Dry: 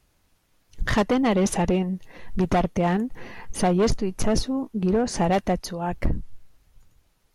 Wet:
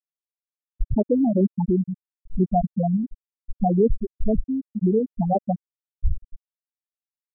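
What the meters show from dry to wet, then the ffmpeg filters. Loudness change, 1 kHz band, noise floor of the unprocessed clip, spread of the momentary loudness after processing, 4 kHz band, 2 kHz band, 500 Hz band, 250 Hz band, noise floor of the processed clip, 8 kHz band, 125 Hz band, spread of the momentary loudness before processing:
+0.5 dB, −2.0 dB, −66 dBFS, 11 LU, below −40 dB, below −40 dB, −0.5 dB, +1.0 dB, below −85 dBFS, below −40 dB, +1.0 dB, 12 LU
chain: -filter_complex "[0:a]asplit=2[link_01][link_02];[link_02]adelay=1149,lowpass=frequency=2000:poles=1,volume=-23dB,asplit=2[link_03][link_04];[link_04]adelay=1149,lowpass=frequency=2000:poles=1,volume=0.26[link_05];[link_01][link_03][link_05]amix=inputs=3:normalize=0,afftfilt=real='re*gte(hypot(re,im),0.631)':imag='im*gte(hypot(re,im),0.631)':win_size=1024:overlap=0.75,volume=3.5dB"

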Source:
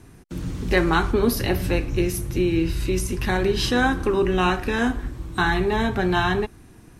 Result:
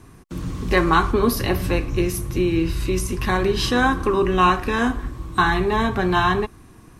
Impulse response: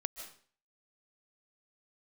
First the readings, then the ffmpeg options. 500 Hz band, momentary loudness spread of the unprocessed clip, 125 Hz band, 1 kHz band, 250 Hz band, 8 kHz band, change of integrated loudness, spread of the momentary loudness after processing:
+1.0 dB, 9 LU, +1.0 dB, +5.0 dB, +1.0 dB, +1.0 dB, +2.0 dB, 8 LU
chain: -af "equalizer=frequency=1100:width=7.9:gain=11.5,volume=1dB"

